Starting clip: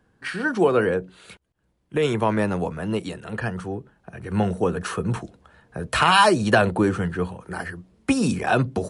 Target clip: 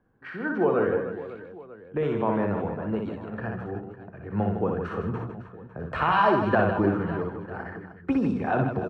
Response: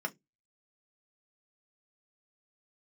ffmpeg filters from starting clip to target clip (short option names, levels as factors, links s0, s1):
-af "lowpass=1500,bandreject=f=60:t=h:w=6,bandreject=f=120:t=h:w=6,bandreject=f=180:t=h:w=6,aecho=1:1:60|156|309.6|555.4|948.6:0.631|0.398|0.251|0.158|0.1,volume=0.562"